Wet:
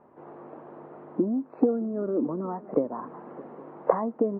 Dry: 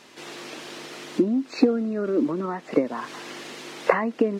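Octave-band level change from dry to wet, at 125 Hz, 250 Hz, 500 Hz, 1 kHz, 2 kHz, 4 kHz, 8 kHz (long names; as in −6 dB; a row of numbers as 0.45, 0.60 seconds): −2.5 dB, −4.0 dB, −2.5 dB, −3.5 dB, below −15 dB, below −40 dB, can't be measured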